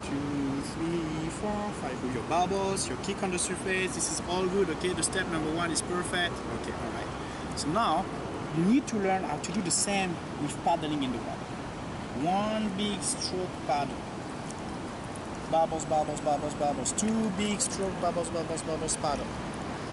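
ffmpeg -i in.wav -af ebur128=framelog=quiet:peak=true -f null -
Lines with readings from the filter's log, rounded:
Integrated loudness:
  I:         -30.5 LUFS
  Threshold: -40.5 LUFS
Loudness range:
  LRA:         2.8 LU
  Threshold: -50.3 LUFS
  LRA low:   -31.8 LUFS
  LRA high:  -29.0 LUFS
True peak:
  Peak:      -14.7 dBFS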